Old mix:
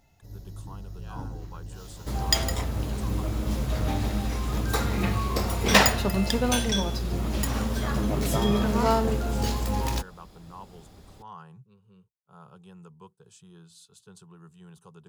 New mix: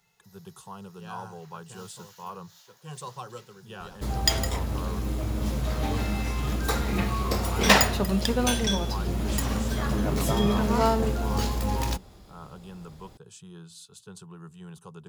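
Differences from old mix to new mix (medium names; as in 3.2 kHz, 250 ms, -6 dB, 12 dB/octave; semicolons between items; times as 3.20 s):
speech +5.5 dB; first sound: add high-pass 940 Hz 24 dB/octave; second sound: entry +1.95 s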